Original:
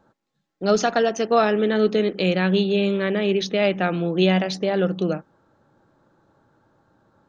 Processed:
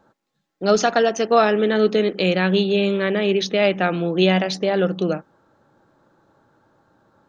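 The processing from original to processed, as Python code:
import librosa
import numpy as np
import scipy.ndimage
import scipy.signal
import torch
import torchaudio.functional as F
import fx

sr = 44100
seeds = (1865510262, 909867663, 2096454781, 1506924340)

y = fx.low_shelf(x, sr, hz=200.0, db=-5.0)
y = y * librosa.db_to_amplitude(3.0)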